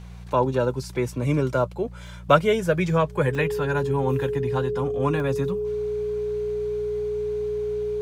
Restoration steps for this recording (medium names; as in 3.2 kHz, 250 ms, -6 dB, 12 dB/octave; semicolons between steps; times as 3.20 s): de-hum 59.4 Hz, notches 3; band-stop 420 Hz, Q 30; interpolate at 2.07/3.35/5.20 s, 1.2 ms